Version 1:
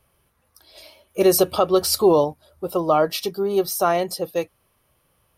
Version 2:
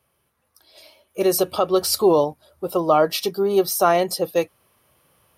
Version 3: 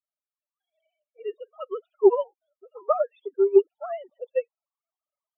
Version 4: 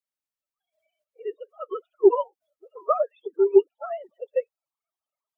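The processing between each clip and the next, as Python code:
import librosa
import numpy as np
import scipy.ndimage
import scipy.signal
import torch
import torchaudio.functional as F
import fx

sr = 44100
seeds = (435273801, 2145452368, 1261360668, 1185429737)

y1 = scipy.signal.sosfilt(scipy.signal.butter(2, 51.0, 'highpass', fs=sr, output='sos'), x)
y1 = fx.low_shelf(y1, sr, hz=76.0, db=-9.5)
y1 = fx.rider(y1, sr, range_db=10, speed_s=2.0)
y2 = fx.sine_speech(y1, sr)
y2 = fx.spec_topn(y2, sr, count=16)
y2 = fx.upward_expand(y2, sr, threshold_db=-24.0, expansion=2.5)
y3 = fx.spec_quant(y2, sr, step_db=30)
y3 = y3 * librosa.db_to_amplitude(1.0)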